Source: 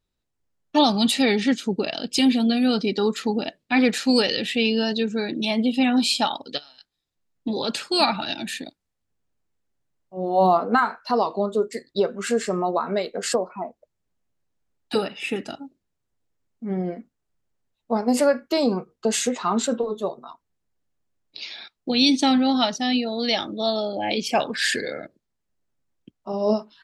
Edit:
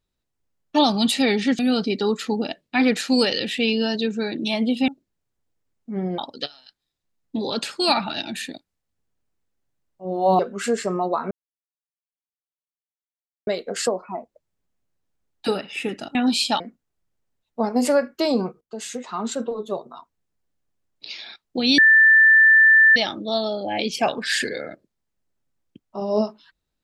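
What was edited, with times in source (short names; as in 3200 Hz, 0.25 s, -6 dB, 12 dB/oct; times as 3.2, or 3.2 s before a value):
1.59–2.56 cut
5.85–6.3 swap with 15.62–16.92
10.51–12.02 cut
12.94 insert silence 2.16 s
18.93–20.2 fade in, from -15.5 dB
22.1–23.28 bleep 1770 Hz -9.5 dBFS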